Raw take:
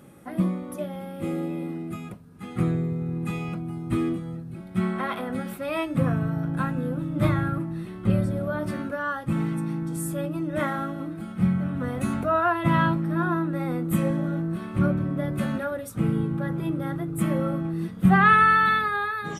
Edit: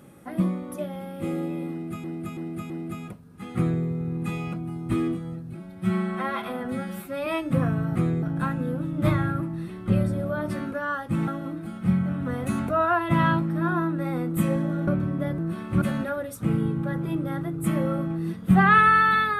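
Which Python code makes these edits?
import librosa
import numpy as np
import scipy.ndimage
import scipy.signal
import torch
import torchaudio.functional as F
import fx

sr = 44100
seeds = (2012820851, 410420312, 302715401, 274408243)

y = fx.edit(x, sr, fx.repeat(start_s=1.71, length_s=0.33, count=4),
    fx.duplicate(start_s=2.57, length_s=0.27, to_s=6.4),
    fx.stretch_span(start_s=4.58, length_s=1.13, factor=1.5),
    fx.cut(start_s=9.45, length_s=1.37),
    fx.move(start_s=14.42, length_s=0.43, to_s=15.36), tone=tone)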